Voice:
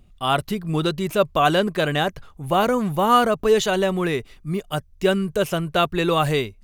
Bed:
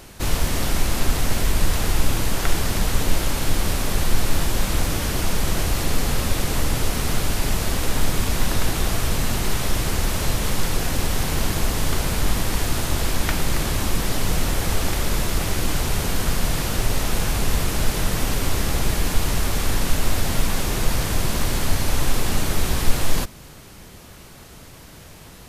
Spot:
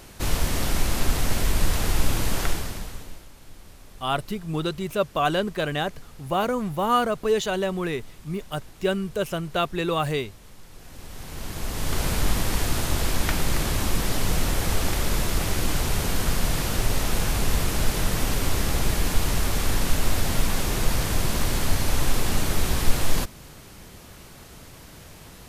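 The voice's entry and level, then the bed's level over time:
3.80 s, -5.0 dB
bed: 2.42 s -2.5 dB
3.29 s -25.5 dB
10.65 s -25.5 dB
12.04 s -2 dB

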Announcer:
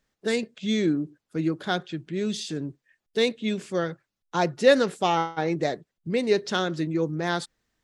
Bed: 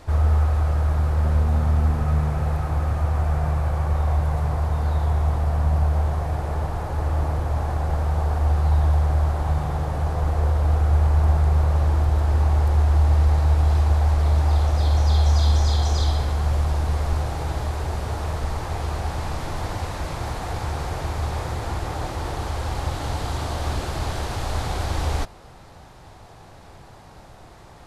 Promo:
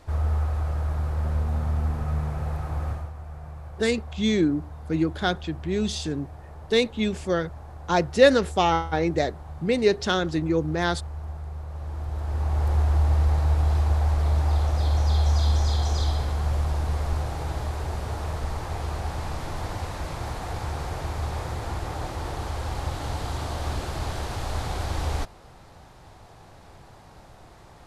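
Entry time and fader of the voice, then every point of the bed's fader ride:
3.55 s, +2.0 dB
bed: 2.91 s -6 dB
3.14 s -17 dB
11.66 s -17 dB
12.7 s -3.5 dB

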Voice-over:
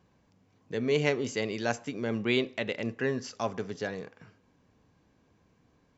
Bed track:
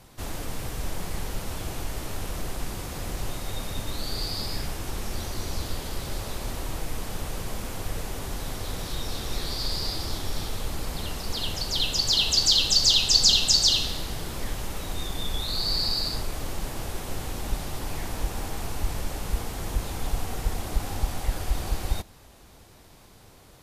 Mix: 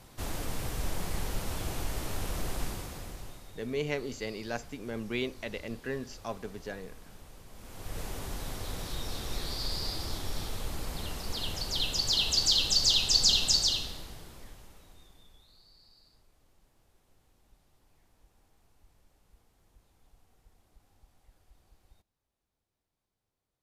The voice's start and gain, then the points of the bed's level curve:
2.85 s, -6.0 dB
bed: 2.64 s -2 dB
3.57 s -19 dB
7.5 s -19 dB
8.01 s -5 dB
13.54 s -5 dB
15.73 s -35 dB

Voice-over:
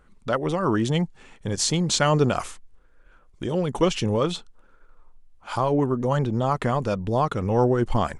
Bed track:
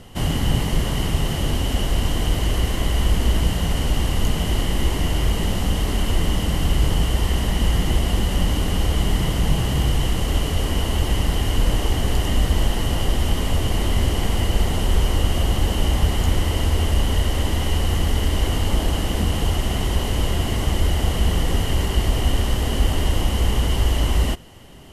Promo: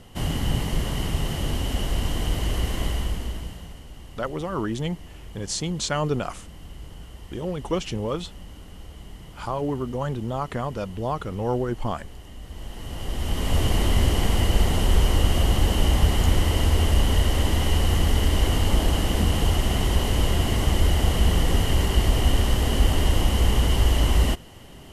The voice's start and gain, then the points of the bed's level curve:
3.90 s, -5.0 dB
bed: 2.86 s -4.5 dB
3.85 s -22 dB
12.39 s -22 dB
13.59 s -0.5 dB

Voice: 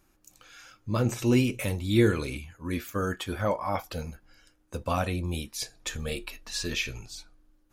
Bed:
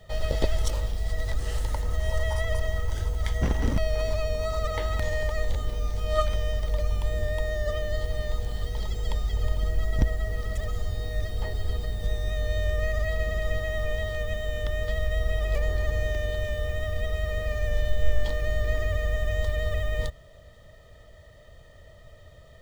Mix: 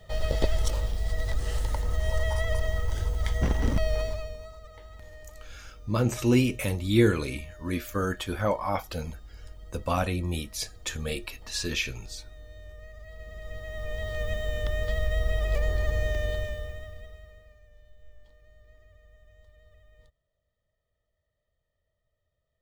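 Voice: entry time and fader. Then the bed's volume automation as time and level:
5.00 s, +1.0 dB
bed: 3.96 s -0.5 dB
4.6 s -19.5 dB
13 s -19.5 dB
14.25 s -0.5 dB
16.33 s -0.5 dB
17.67 s -30 dB

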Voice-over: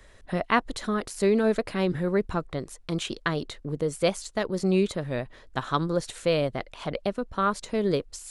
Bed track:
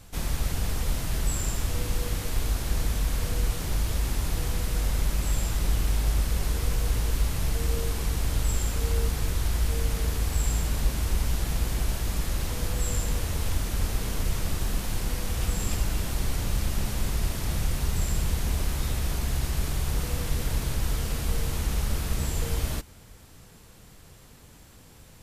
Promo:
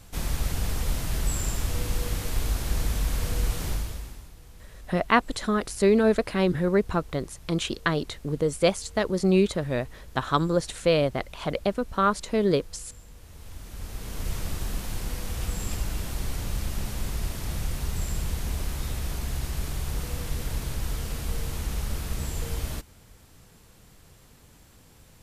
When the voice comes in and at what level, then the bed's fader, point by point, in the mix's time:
4.60 s, +2.5 dB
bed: 3.69 s 0 dB
4.34 s -21 dB
13.14 s -21 dB
14.31 s -3 dB

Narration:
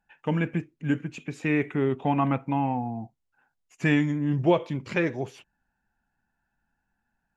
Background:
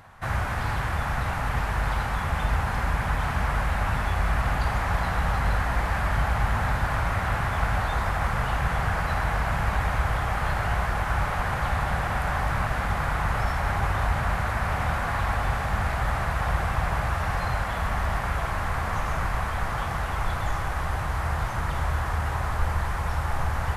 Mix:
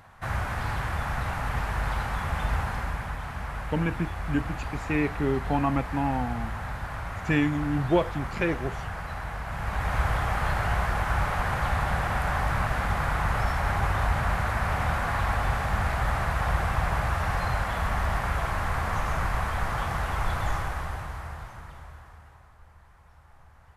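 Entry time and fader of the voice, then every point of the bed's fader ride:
3.45 s, -1.5 dB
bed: 2.6 s -2.5 dB
3.22 s -9 dB
9.45 s -9 dB
10 s -0.5 dB
20.54 s -0.5 dB
22.56 s -28 dB

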